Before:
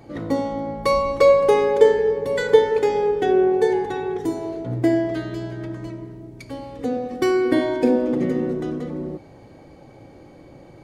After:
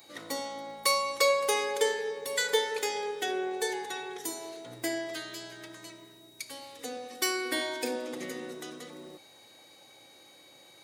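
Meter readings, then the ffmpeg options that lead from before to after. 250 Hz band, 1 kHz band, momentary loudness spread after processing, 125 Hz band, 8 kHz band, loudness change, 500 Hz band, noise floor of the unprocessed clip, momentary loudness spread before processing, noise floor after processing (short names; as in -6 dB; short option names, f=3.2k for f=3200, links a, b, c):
-18.0 dB, -8.5 dB, 17 LU, -25.5 dB, n/a, -11.0 dB, -14.5 dB, -46 dBFS, 17 LU, -56 dBFS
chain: -af "aderivative,aeval=exprs='val(0)+0.000501*sin(2*PI*3800*n/s)':c=same,volume=9dB"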